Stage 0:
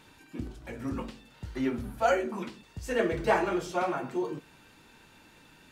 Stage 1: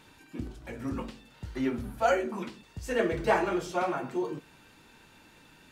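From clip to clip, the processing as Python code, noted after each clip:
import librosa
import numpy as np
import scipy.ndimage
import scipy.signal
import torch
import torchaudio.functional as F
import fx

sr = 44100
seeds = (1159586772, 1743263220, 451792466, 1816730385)

y = x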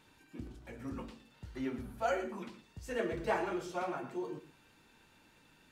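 y = x + 10.0 ** (-12.5 / 20.0) * np.pad(x, (int(115 * sr / 1000.0), 0))[:len(x)]
y = F.gain(torch.from_numpy(y), -8.0).numpy()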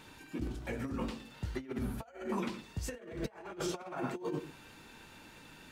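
y = fx.over_compress(x, sr, threshold_db=-43.0, ratio=-0.5)
y = F.gain(torch.from_numpy(y), 5.0).numpy()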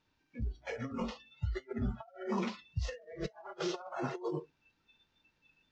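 y = fx.cvsd(x, sr, bps=32000)
y = fx.noise_reduce_blind(y, sr, reduce_db=25)
y = fx.low_shelf(y, sr, hz=120.0, db=6.5)
y = F.gain(torch.from_numpy(y), 1.0).numpy()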